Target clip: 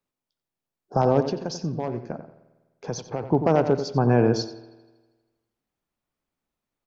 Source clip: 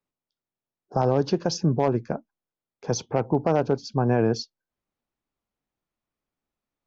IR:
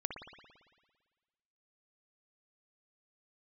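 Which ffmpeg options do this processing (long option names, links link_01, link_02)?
-filter_complex "[0:a]asettb=1/sr,asplit=3[link_01][link_02][link_03];[link_01]atrim=end=1.204[link_04];[link_02]atrim=start=1.2:end=3.23,asetpts=PTS-STARTPTS,afade=type=in:duration=0.004:curve=qsin,afade=type=out:start_time=2.026:duration=0.004:curve=qsin,acompressor=threshold=-34dB:ratio=2[link_05];[link_03]atrim=start=3.226[link_06];[link_04][link_05]acrossfade=duration=0.004:curve1=hsin:curve2=qsin[link_07];[link_07][link_06]acrossfade=duration=0.004:curve1=qsin:curve2=hsin,asplit=2[link_08][link_09];[link_09]adelay=90,lowpass=frequency=3000:poles=1,volume=-10dB,asplit=2[link_10][link_11];[link_11]adelay=90,lowpass=frequency=3000:poles=1,volume=0.31,asplit=2[link_12][link_13];[link_13]adelay=90,lowpass=frequency=3000:poles=1,volume=0.31[link_14];[link_08][link_10][link_12][link_14]amix=inputs=4:normalize=0,asplit=2[link_15][link_16];[1:a]atrim=start_sample=2205,asetrate=48510,aresample=44100[link_17];[link_16][link_17]afir=irnorm=-1:irlink=0,volume=-10.5dB[link_18];[link_15][link_18]amix=inputs=2:normalize=0"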